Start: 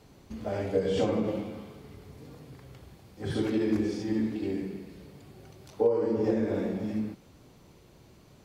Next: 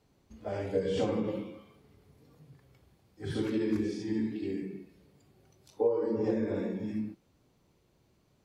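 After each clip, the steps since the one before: spectral noise reduction 10 dB; trim -3 dB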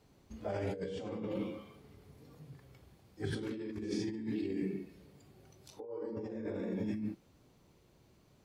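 compressor with a negative ratio -37 dBFS, ratio -1; trim -1.5 dB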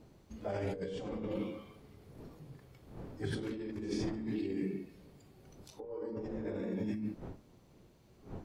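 wind noise 310 Hz -52 dBFS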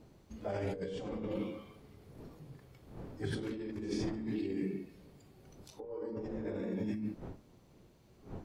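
no audible change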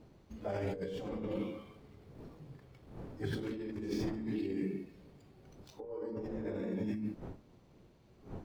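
median filter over 5 samples

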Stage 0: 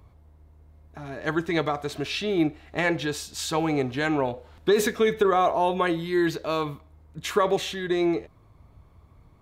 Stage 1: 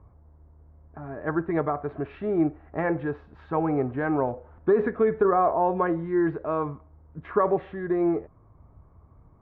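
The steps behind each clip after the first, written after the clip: low-pass 1.5 kHz 24 dB/octave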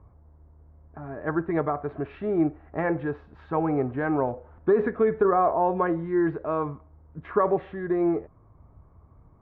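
no audible change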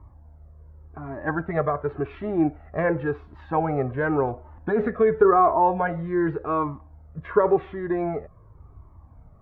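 Shepard-style flanger falling 0.9 Hz; trim +7.5 dB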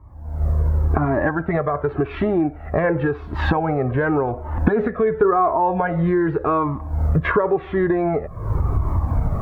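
recorder AGC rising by 65 dB/s

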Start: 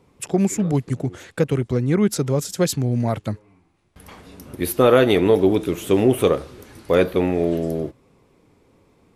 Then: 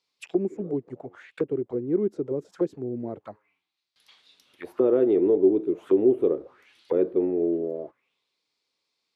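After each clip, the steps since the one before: auto-wah 360–4600 Hz, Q 3.6, down, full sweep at -17 dBFS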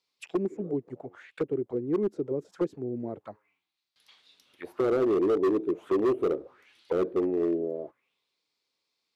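hard clipper -18.5 dBFS, distortion -11 dB; trim -2 dB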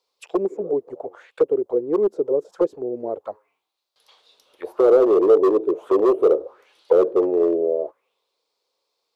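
graphic EQ 125/250/500/1000/2000 Hz -12/-7/+11/+5/-7 dB; trim +4.5 dB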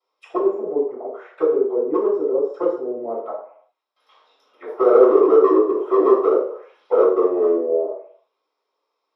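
reverberation RT60 0.55 s, pre-delay 3 ms, DRR -15.5 dB; trim -14 dB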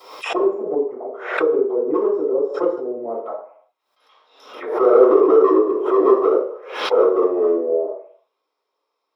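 swell ahead of each attack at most 82 dB/s

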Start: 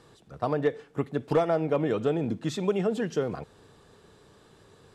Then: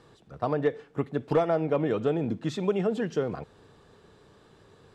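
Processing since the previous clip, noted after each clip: treble shelf 7.3 kHz -10.5 dB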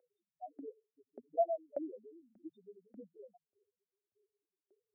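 loudest bins only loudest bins 1; LFO high-pass saw up 1.7 Hz 500–1900 Hz; static phaser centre 690 Hz, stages 8; trim +2 dB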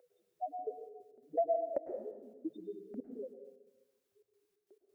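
compression 2.5:1, threshold -44 dBFS, peak gain reduction 12.5 dB; trance gate "xxxxx.xx.x." 135 bpm -24 dB; on a send at -6 dB: reverberation RT60 1.1 s, pre-delay 97 ms; on the sum: trim +10 dB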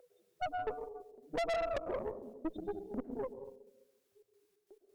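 valve stage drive 41 dB, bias 0.8; trim +9.5 dB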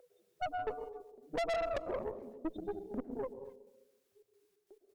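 speakerphone echo 260 ms, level -21 dB

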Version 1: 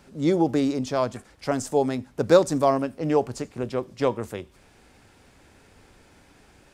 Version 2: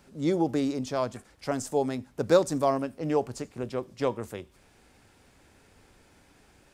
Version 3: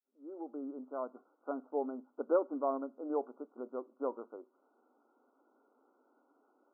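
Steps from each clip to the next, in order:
treble shelf 8.6 kHz +4 dB; trim -4.5 dB
fade-in on the opening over 1.24 s; brick-wall FIR band-pass 230–1500 Hz; trim -8.5 dB

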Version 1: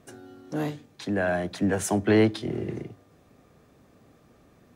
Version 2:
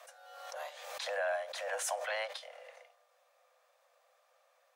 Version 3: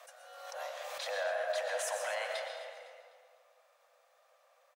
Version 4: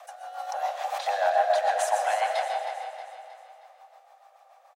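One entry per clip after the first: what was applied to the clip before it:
Chebyshev high-pass 500 Hz, order 10; swell ahead of each attack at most 40 dB/s; trim -6.5 dB
peak limiter -29 dBFS, peak gain reduction 4 dB; feedback delay 253 ms, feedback 38%, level -14 dB; algorithmic reverb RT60 1.7 s, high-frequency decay 0.5×, pre-delay 80 ms, DRR 2 dB
rotary cabinet horn 7 Hz; resonant high-pass 780 Hz, resonance Q 8.7; feedback delay 315 ms, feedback 47%, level -10.5 dB; trim +6 dB

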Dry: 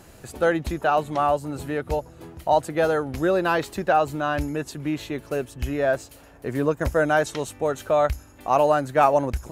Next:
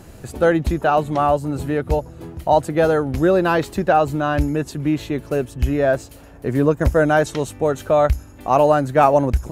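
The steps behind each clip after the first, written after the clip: bass shelf 420 Hz +7.5 dB; trim +2 dB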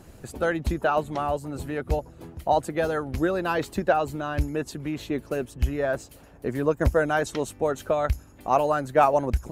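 harmonic-percussive split harmonic -8 dB; trim -3.5 dB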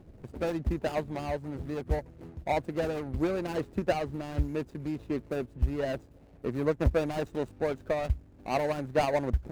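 median filter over 41 samples; trim -3 dB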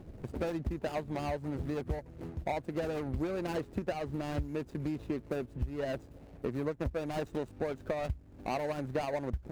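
compression 6:1, threshold -35 dBFS, peak gain reduction 16 dB; trim +3.5 dB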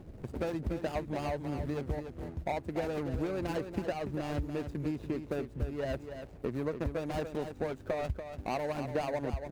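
delay 288 ms -8.5 dB

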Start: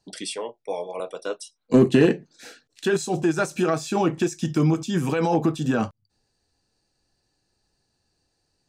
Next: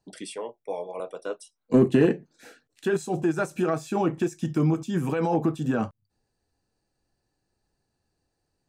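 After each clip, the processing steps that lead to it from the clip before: peaking EQ 4.8 kHz -8.5 dB 1.8 oct; trim -2.5 dB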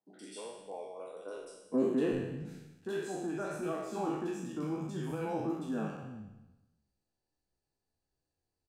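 spectral sustain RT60 1.03 s; flange 1.6 Hz, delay 9.8 ms, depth 6.1 ms, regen +58%; three bands offset in time mids, highs, lows 60/370 ms, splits 170/1600 Hz; trim -8.5 dB

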